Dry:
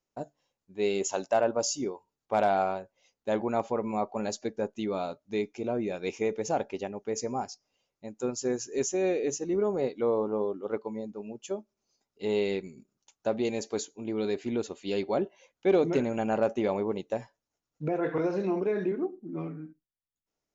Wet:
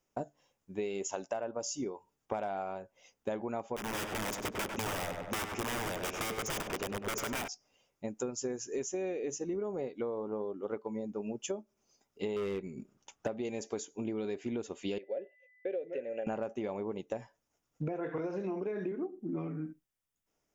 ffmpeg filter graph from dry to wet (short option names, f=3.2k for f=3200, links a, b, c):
-filter_complex "[0:a]asettb=1/sr,asplit=3[a][b][c];[a]atrim=end=3.764[d];[b]atrim=start=3.76:end=7.48,asetpts=PTS-STARTPTS,afade=t=in:d=0.004:c=qsin,afade=t=out:st=3.716:d=0.004:c=qsin,aeval=exprs='(mod(25.1*val(0)+1,2)-1)/25.1':c=same,asplit=2[e][f];[f]adelay=98,lowpass=f=2.8k:p=1,volume=-6dB,asplit=2[g][h];[h]adelay=98,lowpass=f=2.8k:p=1,volume=0.42,asplit=2[i][j];[j]adelay=98,lowpass=f=2.8k:p=1,volume=0.42,asplit=2[k][l];[l]adelay=98,lowpass=f=2.8k:p=1,volume=0.42,asplit=2[m][n];[n]adelay=98,lowpass=f=2.8k:p=1,volume=0.42[o];[e][g][i][k][m][o]amix=inputs=6:normalize=0,atrim=end_sample=164052[p];[c]atrim=start=7.476[q];[d][p]acrossfade=d=0.004:c1=hsin:c2=qsin[r];[r][q]acrossfade=d=0.004:c1=qsin:c2=hsin,asettb=1/sr,asplit=3[s][t][u];[s]atrim=end=12.364[v];[t]atrim=start=12.36:end=13.28,asetpts=PTS-STARTPTS,afade=t=in:d=0.004:c=qsin,afade=t=out:st=0.916:d=0.004:c=qsin,highshelf=f=4.9k:g=-10,acontrast=43,asoftclip=type=hard:threshold=-21dB[w];[u]atrim=start=13.276[x];[v][w]acrossfade=d=0.004:c1=hsin:c2=qsin[y];[y][x]acrossfade=d=0.004:c1=qsin:c2=hsin,asettb=1/sr,asplit=3[z][aa][ab];[z]atrim=end=14.984[ac];[aa]atrim=start=14.98:end=16.27,asetpts=PTS-STARTPTS,afade=t=in:d=0.004:c=qsin,afade=t=out:st=1.286:d=0.004:c=qsin,agate=range=-33dB:threshold=-50dB:ratio=3:release=100:detection=peak,aeval=exprs='val(0)+0.00141*sin(2*PI*2000*n/s)':c=same,asplit=3[ad][ae][af];[ad]bandpass=f=530:t=q:w=8,volume=0dB[ag];[ae]bandpass=f=1.84k:t=q:w=8,volume=-6dB[ah];[af]bandpass=f=2.48k:t=q:w=8,volume=-9dB[ai];[ag][ah][ai]amix=inputs=3:normalize=0[aj];[ab]atrim=start=16.266[ak];[ac][aj]acrossfade=d=0.004:c1=hsin:c2=qsin[al];[al][ak]acrossfade=d=0.004:c1=qsin:c2=hsin,equalizer=f=4.2k:t=o:w=0.22:g=-11.5,acompressor=threshold=-39dB:ratio=12,volume=6dB"